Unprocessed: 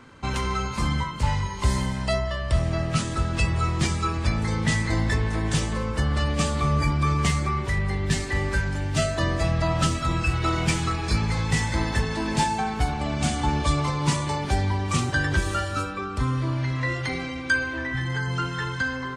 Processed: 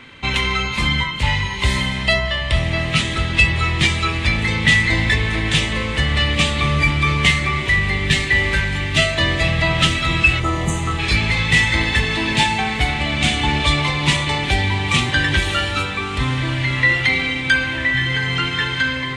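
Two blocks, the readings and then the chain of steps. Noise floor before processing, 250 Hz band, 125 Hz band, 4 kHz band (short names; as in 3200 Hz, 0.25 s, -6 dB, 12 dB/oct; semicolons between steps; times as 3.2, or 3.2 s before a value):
-32 dBFS, +4.0 dB, +3.5 dB, +14.0 dB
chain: spectral delete 10.4–10.99, 1400–5900 Hz; band shelf 2700 Hz +12.5 dB 1.3 oct; on a send: diffused feedback echo 1.269 s, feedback 64%, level -13.5 dB; on the sum: gain +3.5 dB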